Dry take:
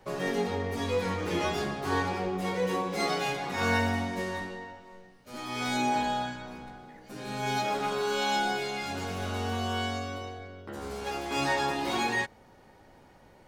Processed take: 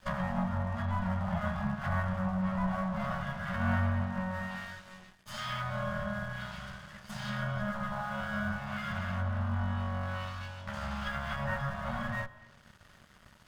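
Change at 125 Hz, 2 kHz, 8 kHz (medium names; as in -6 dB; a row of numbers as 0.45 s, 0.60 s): +4.5 dB, -4.0 dB, -14.5 dB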